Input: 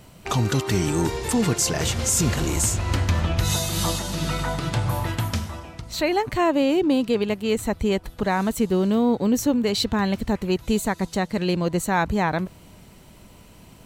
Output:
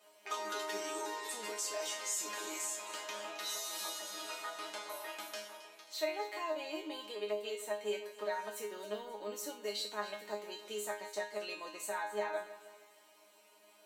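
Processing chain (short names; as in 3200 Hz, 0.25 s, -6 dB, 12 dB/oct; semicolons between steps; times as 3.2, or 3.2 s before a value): HPF 420 Hz 24 dB/oct; compressor 2.5:1, threshold -26 dBFS, peak gain reduction 7 dB; resonator bank G#3 fifth, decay 0.36 s; split-band echo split 2300 Hz, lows 0.156 s, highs 0.268 s, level -14.5 dB; gain +6 dB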